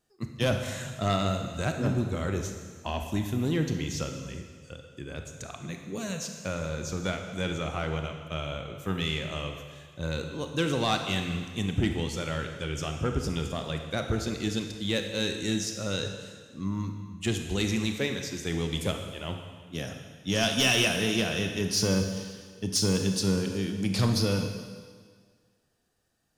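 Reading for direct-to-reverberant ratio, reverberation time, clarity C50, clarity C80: 4.5 dB, 1.7 s, 5.5 dB, 7.0 dB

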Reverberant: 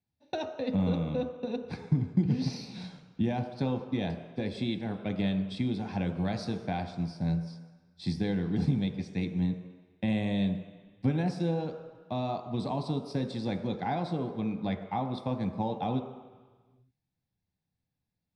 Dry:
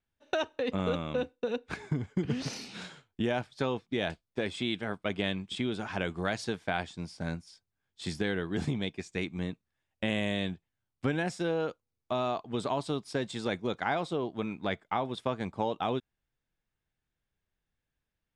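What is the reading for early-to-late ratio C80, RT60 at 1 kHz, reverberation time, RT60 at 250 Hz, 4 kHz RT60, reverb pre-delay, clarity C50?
9.5 dB, 1.4 s, 1.4 s, 1.7 s, 1.4 s, 3 ms, 8.0 dB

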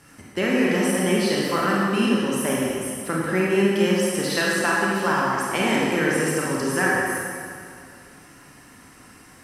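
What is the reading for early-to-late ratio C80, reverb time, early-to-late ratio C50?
−0.5 dB, 2.3 s, −2.5 dB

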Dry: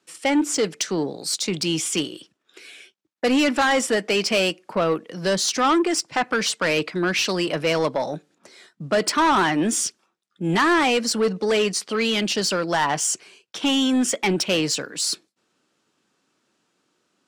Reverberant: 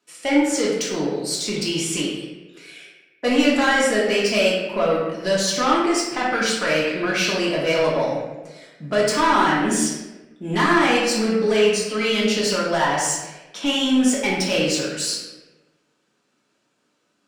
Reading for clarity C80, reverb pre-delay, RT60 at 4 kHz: 3.5 dB, 3 ms, 0.80 s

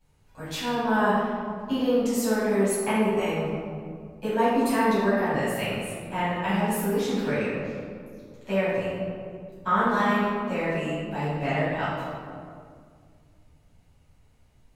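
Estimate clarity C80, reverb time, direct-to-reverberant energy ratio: 0.0 dB, 2.1 s, −12.0 dB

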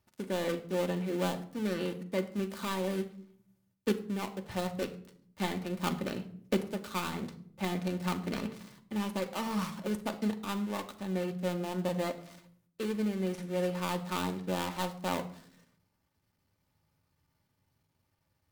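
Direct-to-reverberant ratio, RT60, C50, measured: 5.0 dB, 0.60 s, 14.5 dB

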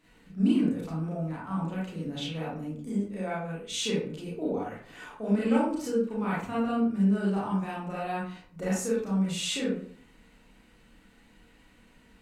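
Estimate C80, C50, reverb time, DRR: 6.5 dB, 0.5 dB, 0.55 s, −7.5 dB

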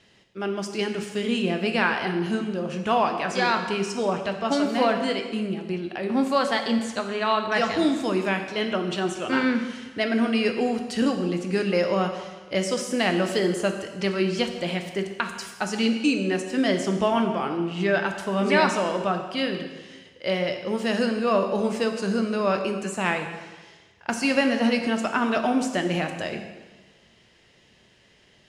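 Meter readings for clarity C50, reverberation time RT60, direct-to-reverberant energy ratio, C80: 7.0 dB, 1.3 s, 5.0 dB, 8.5 dB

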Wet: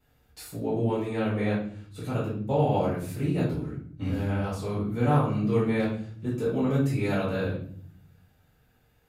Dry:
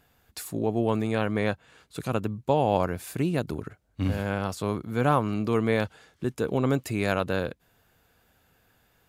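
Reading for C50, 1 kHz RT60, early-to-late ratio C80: 4.0 dB, 0.45 s, 8.5 dB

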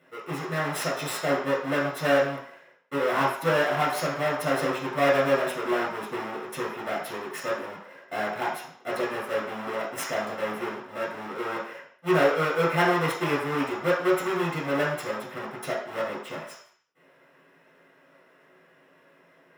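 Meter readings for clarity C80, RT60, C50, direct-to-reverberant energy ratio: 7.0 dB, 0.60 s, 2.5 dB, −7.0 dB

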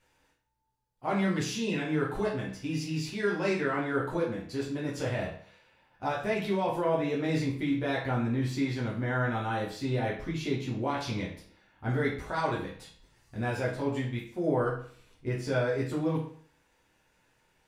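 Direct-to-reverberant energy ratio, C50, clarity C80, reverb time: −5.5 dB, 5.5 dB, 9.5 dB, 0.50 s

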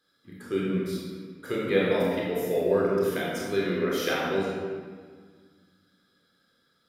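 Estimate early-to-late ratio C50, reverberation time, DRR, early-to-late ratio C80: −2.0 dB, 1.7 s, −5.5 dB, 0.5 dB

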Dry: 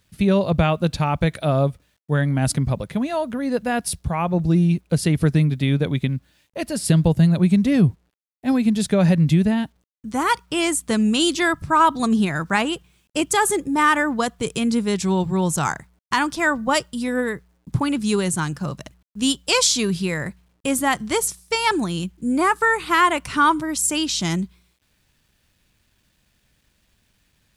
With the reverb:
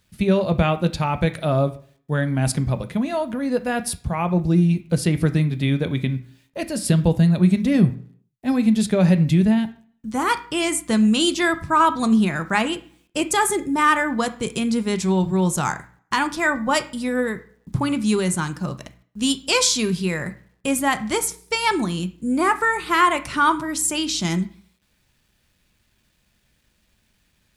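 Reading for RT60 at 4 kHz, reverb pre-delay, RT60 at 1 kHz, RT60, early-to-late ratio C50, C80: 0.45 s, 3 ms, 0.50 s, 0.50 s, 15.5 dB, 20.0 dB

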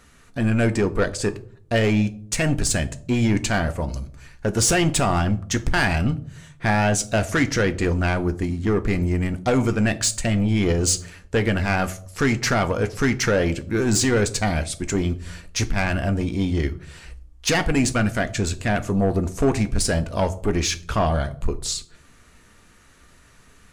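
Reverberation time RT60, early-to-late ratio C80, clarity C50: 0.55 s, 21.5 dB, 18.0 dB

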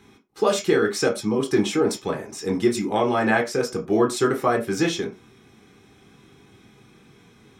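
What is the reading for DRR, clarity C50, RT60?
0.5 dB, 13.5 dB, non-exponential decay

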